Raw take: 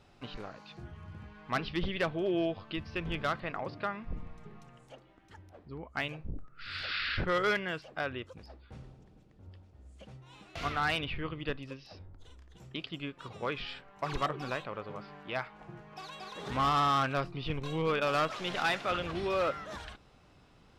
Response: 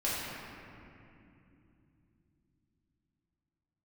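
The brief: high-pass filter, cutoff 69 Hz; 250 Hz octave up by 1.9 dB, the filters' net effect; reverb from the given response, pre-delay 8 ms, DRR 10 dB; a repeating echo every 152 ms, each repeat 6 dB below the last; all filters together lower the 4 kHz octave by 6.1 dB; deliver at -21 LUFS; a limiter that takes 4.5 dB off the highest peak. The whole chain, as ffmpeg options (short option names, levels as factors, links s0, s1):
-filter_complex "[0:a]highpass=69,equalizer=f=250:t=o:g=3,equalizer=f=4000:t=o:g=-8.5,alimiter=level_in=1.06:limit=0.0631:level=0:latency=1,volume=0.944,aecho=1:1:152|304|456|608|760|912:0.501|0.251|0.125|0.0626|0.0313|0.0157,asplit=2[s0][s1];[1:a]atrim=start_sample=2205,adelay=8[s2];[s1][s2]afir=irnorm=-1:irlink=0,volume=0.126[s3];[s0][s3]amix=inputs=2:normalize=0,volume=4.73"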